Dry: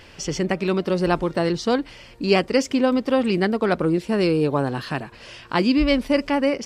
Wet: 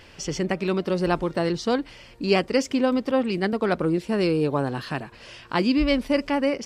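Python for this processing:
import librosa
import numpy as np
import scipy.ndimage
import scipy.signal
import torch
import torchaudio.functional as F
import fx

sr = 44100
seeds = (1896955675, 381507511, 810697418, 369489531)

y = fx.band_widen(x, sr, depth_pct=100, at=(3.11, 3.53))
y = y * 10.0 ** (-2.5 / 20.0)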